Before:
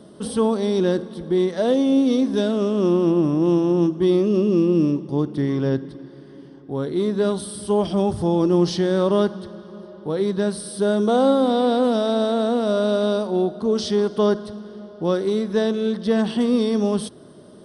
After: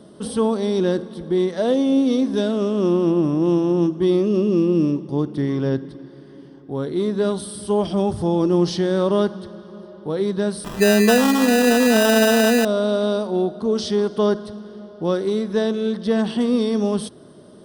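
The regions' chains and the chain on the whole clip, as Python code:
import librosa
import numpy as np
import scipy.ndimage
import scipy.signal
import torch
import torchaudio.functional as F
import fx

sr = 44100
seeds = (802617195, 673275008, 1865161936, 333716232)

y = fx.chain(x, sr, fx.comb(ms=4.6, depth=0.82),
    fx.sample_hold(seeds[0], rate_hz=2200.0, jitter_pct=0), at=(10.64, 12.65))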